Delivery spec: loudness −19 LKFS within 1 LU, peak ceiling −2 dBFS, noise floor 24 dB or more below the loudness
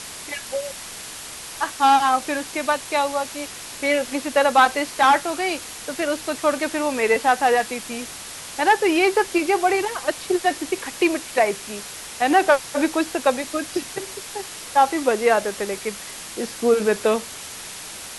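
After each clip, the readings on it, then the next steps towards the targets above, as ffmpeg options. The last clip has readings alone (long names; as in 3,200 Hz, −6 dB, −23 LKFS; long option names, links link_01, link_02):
background noise floor −36 dBFS; target noise floor −46 dBFS; integrated loudness −21.5 LKFS; sample peak −5.0 dBFS; target loudness −19.0 LKFS
→ -af "afftdn=noise_reduction=10:noise_floor=-36"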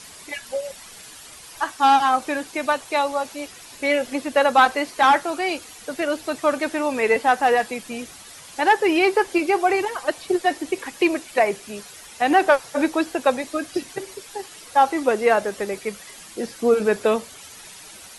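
background noise floor −43 dBFS; target noise floor −45 dBFS
→ -af "afftdn=noise_reduction=6:noise_floor=-43"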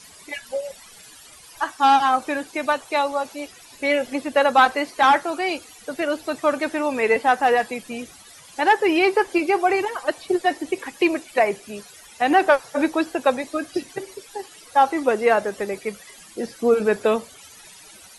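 background noise floor −46 dBFS; integrated loudness −21.0 LKFS; sample peak −5.0 dBFS; target loudness −19.0 LKFS
→ -af "volume=2dB"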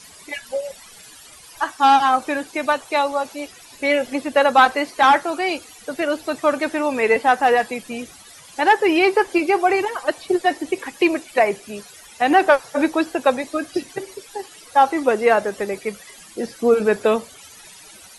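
integrated loudness −19.0 LKFS; sample peak −3.0 dBFS; background noise floor −44 dBFS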